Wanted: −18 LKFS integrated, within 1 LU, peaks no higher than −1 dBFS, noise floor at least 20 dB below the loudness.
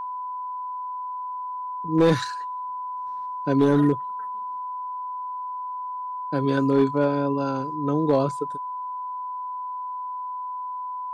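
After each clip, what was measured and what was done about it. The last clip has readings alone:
share of clipped samples 0.4%; peaks flattened at −12.0 dBFS; interfering tone 1,000 Hz; level of the tone −29 dBFS; integrated loudness −26.5 LKFS; sample peak −12.0 dBFS; target loudness −18.0 LKFS
→ clipped peaks rebuilt −12 dBFS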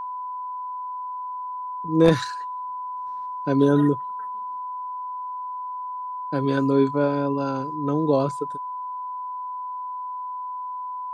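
share of clipped samples 0.0%; interfering tone 1,000 Hz; level of the tone −29 dBFS
→ notch filter 1,000 Hz, Q 30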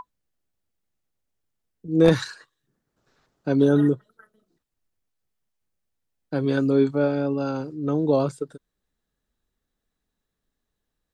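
interfering tone none found; integrated loudness −22.5 LKFS; sample peak −3.0 dBFS; target loudness −18.0 LKFS
→ level +4.5 dB
brickwall limiter −1 dBFS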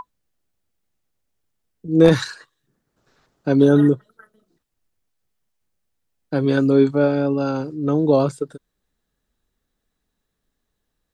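integrated loudness −18.0 LKFS; sample peak −1.0 dBFS; background noise floor −77 dBFS

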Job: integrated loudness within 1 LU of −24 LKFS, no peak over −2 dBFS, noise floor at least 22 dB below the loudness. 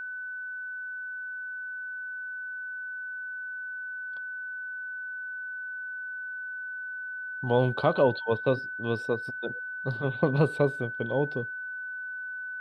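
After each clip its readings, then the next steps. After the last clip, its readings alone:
interfering tone 1,500 Hz; level of the tone −34 dBFS; integrated loudness −31.5 LKFS; sample peak −9.5 dBFS; target loudness −24.0 LKFS
→ notch filter 1,500 Hz, Q 30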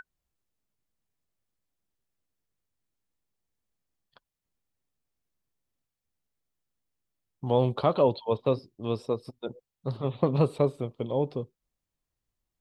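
interfering tone none found; integrated loudness −28.5 LKFS; sample peak −9.5 dBFS; target loudness −24.0 LKFS
→ level +4.5 dB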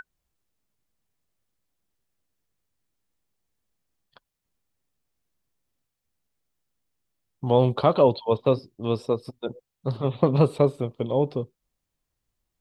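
integrated loudness −24.0 LKFS; sample peak −5.0 dBFS; background noise floor −83 dBFS

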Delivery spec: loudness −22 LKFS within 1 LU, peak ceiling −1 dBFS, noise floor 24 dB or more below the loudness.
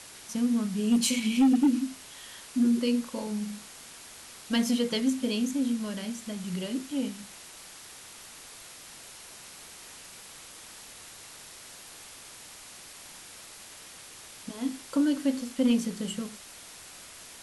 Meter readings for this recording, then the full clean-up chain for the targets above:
share of clipped samples 0.3%; peaks flattened at −17.0 dBFS; background noise floor −48 dBFS; target noise floor −53 dBFS; integrated loudness −28.5 LKFS; sample peak −17.0 dBFS; target loudness −22.0 LKFS
→ clipped peaks rebuilt −17 dBFS
broadband denoise 6 dB, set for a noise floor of −48 dBFS
level +6.5 dB

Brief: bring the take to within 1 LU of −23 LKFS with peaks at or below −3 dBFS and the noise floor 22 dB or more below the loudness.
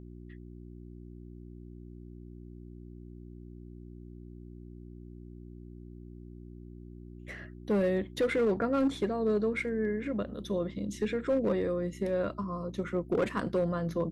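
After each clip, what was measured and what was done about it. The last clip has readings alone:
share of clipped samples 0.8%; peaks flattened at −22.0 dBFS; mains hum 60 Hz; hum harmonics up to 360 Hz; level of the hum −44 dBFS; integrated loudness −31.0 LKFS; sample peak −22.0 dBFS; target loudness −23.0 LKFS
→ clipped peaks rebuilt −22 dBFS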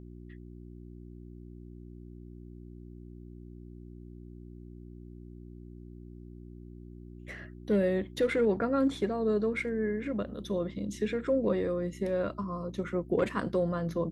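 share of clipped samples 0.0%; mains hum 60 Hz; hum harmonics up to 360 Hz; level of the hum −44 dBFS
→ hum removal 60 Hz, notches 6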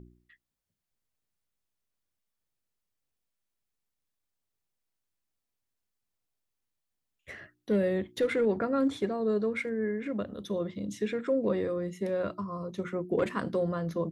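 mains hum none found; integrated loudness −31.0 LKFS; sample peak −17.0 dBFS; target loudness −23.0 LKFS
→ level +8 dB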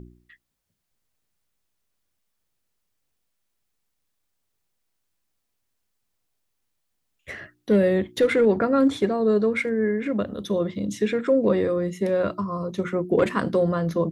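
integrated loudness −23.0 LKFS; sample peak −9.0 dBFS; background noise floor −77 dBFS

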